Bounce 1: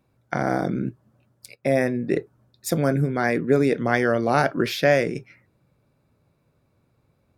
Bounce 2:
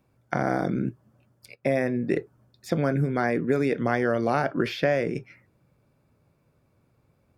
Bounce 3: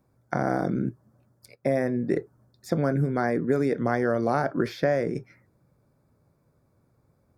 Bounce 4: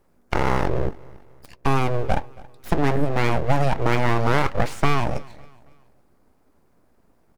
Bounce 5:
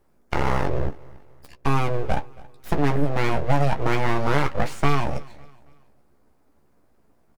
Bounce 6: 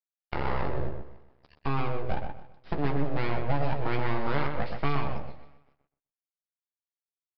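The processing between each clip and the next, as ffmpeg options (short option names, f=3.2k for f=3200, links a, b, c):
-filter_complex "[0:a]bandreject=f=3.9k:w=12,acrossover=split=1300|4400[a][b][c];[a]acompressor=threshold=-20dB:ratio=4[d];[b]acompressor=threshold=-32dB:ratio=4[e];[c]acompressor=threshold=-55dB:ratio=4[f];[d][e][f]amix=inputs=3:normalize=0"
-af "equalizer=f=2.8k:w=2.3:g=-14.5"
-af "aeval=exprs='abs(val(0))':c=same,aecho=1:1:276|552|828:0.075|0.0292|0.0114,volume=6.5dB"
-filter_complex "[0:a]asplit=2[a][b];[b]adelay=14,volume=-7dB[c];[a][c]amix=inputs=2:normalize=0,volume=-2.5dB"
-filter_complex "[0:a]aresample=11025,aeval=exprs='sgn(val(0))*max(abs(val(0))-0.00562,0)':c=same,aresample=44100,asplit=2[a][b];[b]adelay=125,lowpass=f=2.5k:p=1,volume=-5.5dB,asplit=2[c][d];[d]adelay=125,lowpass=f=2.5k:p=1,volume=0.23,asplit=2[e][f];[f]adelay=125,lowpass=f=2.5k:p=1,volume=0.23[g];[a][c][e][g]amix=inputs=4:normalize=0,volume=-8dB"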